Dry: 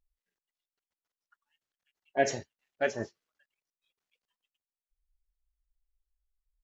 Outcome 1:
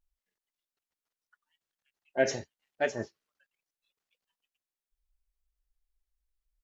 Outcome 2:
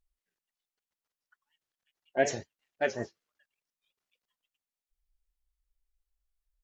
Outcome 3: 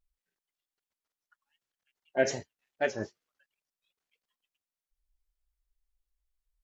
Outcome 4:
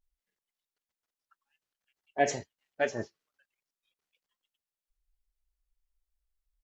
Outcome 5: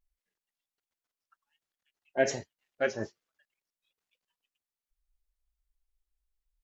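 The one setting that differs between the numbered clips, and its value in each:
vibrato, rate: 0.83, 5.4, 2.6, 0.5, 1.3 Hz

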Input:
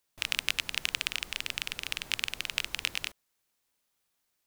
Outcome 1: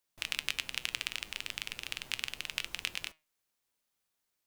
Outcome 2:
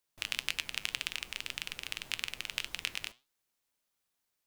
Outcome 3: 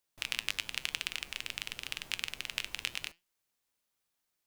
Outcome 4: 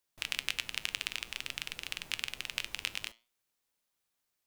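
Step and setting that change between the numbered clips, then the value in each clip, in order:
flange, rate: 0.35, 1.8, 0.93, 0.52 Hz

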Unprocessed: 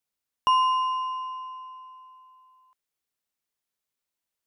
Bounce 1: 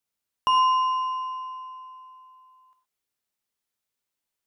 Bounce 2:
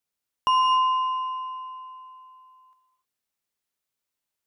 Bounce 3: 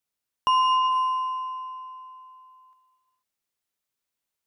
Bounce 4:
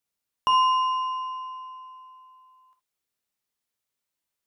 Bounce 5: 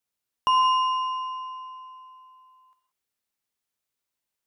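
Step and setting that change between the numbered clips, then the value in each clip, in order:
non-linear reverb, gate: 140, 330, 510, 90, 200 ms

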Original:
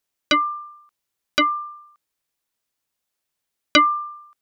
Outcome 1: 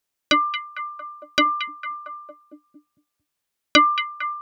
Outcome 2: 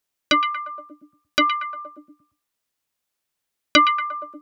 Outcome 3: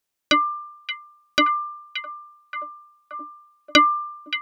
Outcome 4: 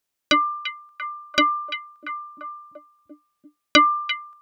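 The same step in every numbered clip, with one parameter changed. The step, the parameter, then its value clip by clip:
delay with a stepping band-pass, time: 0.227, 0.117, 0.576, 0.343 s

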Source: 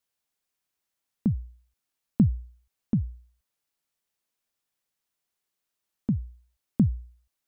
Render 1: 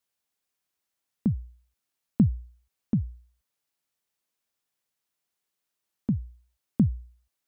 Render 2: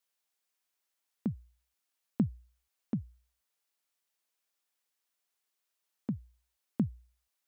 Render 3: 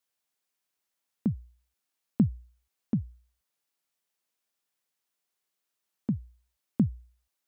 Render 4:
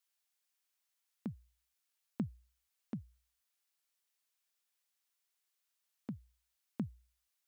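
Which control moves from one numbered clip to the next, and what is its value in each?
HPF, cutoff: 44, 490, 190, 1400 Hz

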